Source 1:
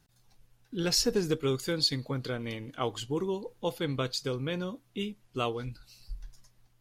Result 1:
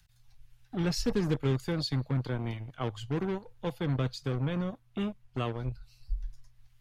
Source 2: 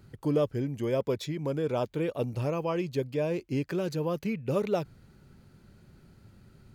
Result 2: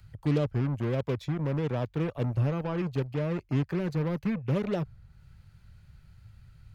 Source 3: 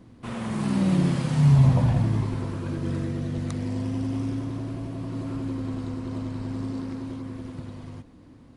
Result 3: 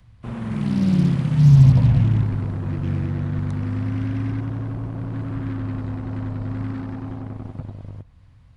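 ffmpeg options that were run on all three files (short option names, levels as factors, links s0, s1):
-filter_complex "[0:a]bass=f=250:g=12,treble=f=4000:g=-6,acrossover=split=140|560|1700[s0][s1][s2][s3];[s1]acrusher=bits=4:mix=0:aa=0.5[s4];[s3]acompressor=mode=upward:threshold=0.001:ratio=2.5[s5];[s0][s4][s2][s5]amix=inputs=4:normalize=0,volume=0.562"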